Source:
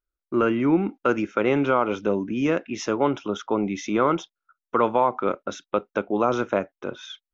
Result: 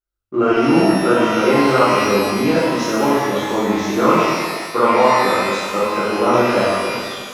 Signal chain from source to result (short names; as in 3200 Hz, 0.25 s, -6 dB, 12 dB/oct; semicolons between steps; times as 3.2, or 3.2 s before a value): in parallel at -4 dB: backlash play -35.5 dBFS; on the sum: notch 2400 Hz, Q 22; shimmer reverb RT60 1.5 s, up +12 st, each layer -8 dB, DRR -10 dB; gain -7 dB